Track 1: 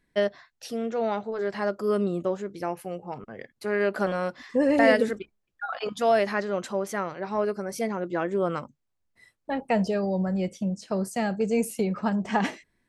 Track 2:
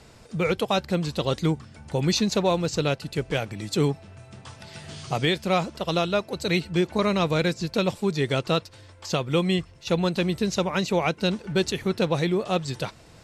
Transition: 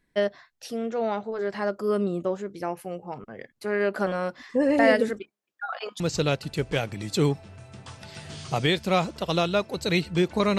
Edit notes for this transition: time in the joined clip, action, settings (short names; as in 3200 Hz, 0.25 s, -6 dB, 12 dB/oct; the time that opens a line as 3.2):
track 1
5.2–6 HPF 180 Hz -> 640 Hz
6 switch to track 2 from 2.59 s